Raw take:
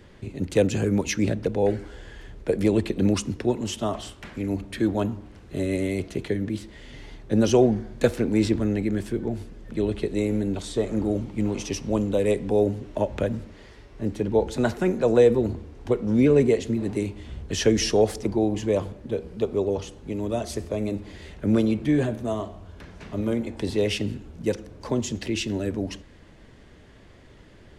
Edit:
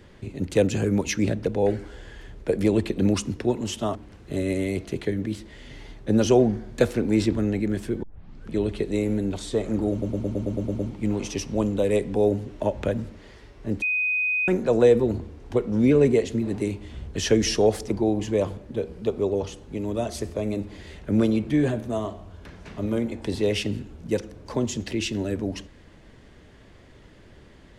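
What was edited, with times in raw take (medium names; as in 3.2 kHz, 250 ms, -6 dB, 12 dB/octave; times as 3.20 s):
3.95–5.18 s: delete
9.26 s: tape start 0.48 s
11.14 s: stutter 0.11 s, 9 plays
14.17–14.83 s: bleep 2.5 kHz -21 dBFS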